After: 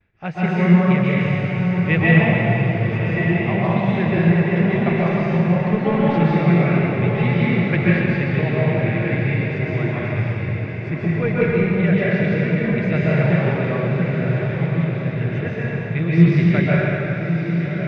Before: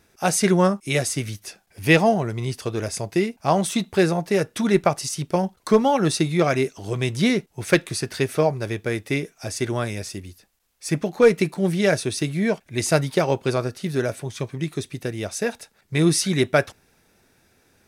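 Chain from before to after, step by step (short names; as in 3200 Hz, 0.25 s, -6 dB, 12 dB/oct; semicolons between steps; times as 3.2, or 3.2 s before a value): gate with hold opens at -50 dBFS; LPF 2300 Hz 24 dB/oct; band shelf 590 Hz -10 dB 3 oct; on a send: diffused feedback echo 1.159 s, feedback 43%, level -7 dB; on the sum: plate-style reverb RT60 3.2 s, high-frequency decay 0.75×, pre-delay 0.115 s, DRR -8 dB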